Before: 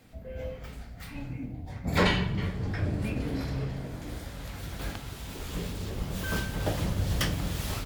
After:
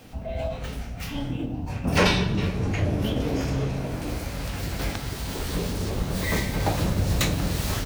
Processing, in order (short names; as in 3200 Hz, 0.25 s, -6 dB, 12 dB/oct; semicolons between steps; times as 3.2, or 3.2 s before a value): in parallel at +2.5 dB: compressor, threshold -36 dBFS, peak gain reduction 16 dB; on the sum: formant shift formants +4 st; gain +2 dB